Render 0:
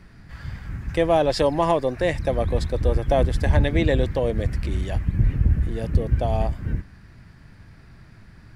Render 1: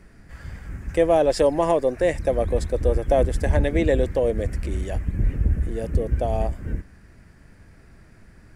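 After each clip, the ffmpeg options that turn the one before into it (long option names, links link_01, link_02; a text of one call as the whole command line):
ffmpeg -i in.wav -af "equalizer=frequency=125:width_type=o:width=1:gain=-7,equalizer=frequency=500:width_type=o:width=1:gain=4,equalizer=frequency=1000:width_type=o:width=1:gain=-4,equalizer=frequency=4000:width_type=o:width=1:gain=-8,equalizer=frequency=8000:width_type=o:width=1:gain=6" out.wav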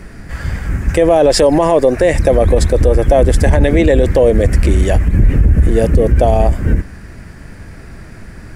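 ffmpeg -i in.wav -af "alimiter=level_in=17.5dB:limit=-1dB:release=50:level=0:latency=1,volume=-1dB" out.wav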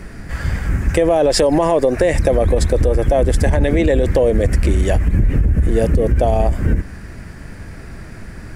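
ffmpeg -i in.wav -af "acompressor=threshold=-10dB:ratio=6" out.wav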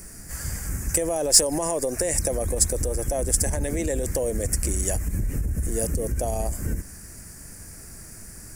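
ffmpeg -i in.wav -af "aexciter=amount=10:drive=7.6:freq=5400,volume=-12dB" out.wav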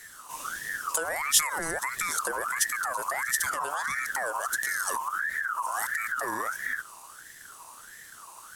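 ffmpeg -i in.wav -af "aeval=exprs='val(0)*sin(2*PI*1400*n/s+1400*0.3/1.5*sin(2*PI*1.5*n/s))':channel_layout=same,volume=-3dB" out.wav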